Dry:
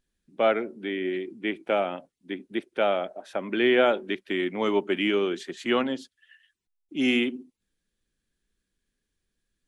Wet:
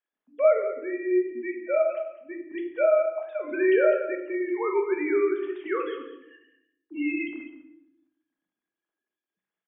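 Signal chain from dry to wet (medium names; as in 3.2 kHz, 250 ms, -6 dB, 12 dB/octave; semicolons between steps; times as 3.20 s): formants replaced by sine waves; dynamic bell 290 Hz, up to -7 dB, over -38 dBFS, Q 1.6; delay 202 ms -13 dB; reverberation RT60 0.80 s, pre-delay 5 ms, DRR 2.5 dB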